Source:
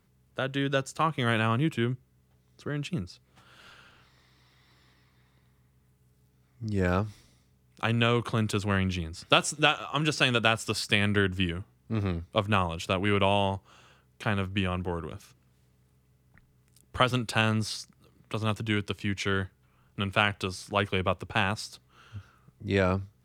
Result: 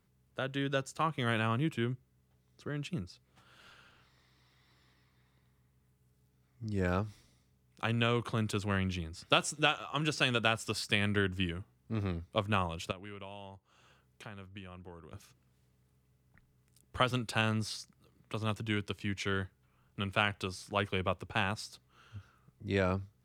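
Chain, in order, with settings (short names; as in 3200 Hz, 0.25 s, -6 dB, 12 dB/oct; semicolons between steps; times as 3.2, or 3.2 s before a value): 12.91–15.13 compressor 2.5:1, threshold -46 dBFS, peak gain reduction 17 dB; gain -5.5 dB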